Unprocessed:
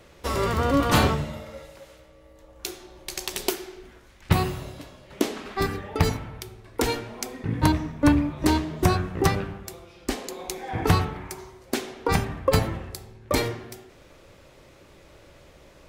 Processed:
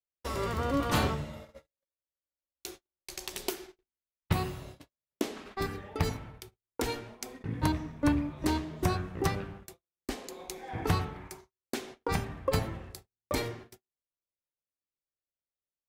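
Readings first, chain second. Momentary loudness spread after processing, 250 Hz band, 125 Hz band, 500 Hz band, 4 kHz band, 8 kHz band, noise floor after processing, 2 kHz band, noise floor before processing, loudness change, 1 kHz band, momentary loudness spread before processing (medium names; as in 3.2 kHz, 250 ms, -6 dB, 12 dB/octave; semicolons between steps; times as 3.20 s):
18 LU, -8.0 dB, -8.0 dB, -8.0 dB, -8.0 dB, -8.0 dB, under -85 dBFS, -8.0 dB, -52 dBFS, -8.0 dB, -8.0 dB, 18 LU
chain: gate -38 dBFS, range -48 dB; trim -8 dB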